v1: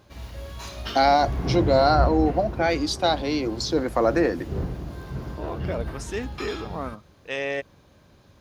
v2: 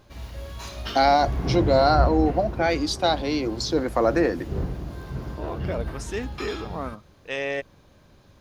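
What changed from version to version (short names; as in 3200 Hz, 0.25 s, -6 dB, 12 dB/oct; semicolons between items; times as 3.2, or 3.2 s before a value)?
master: remove HPF 43 Hz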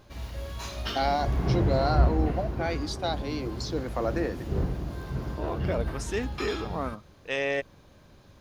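first voice -8.5 dB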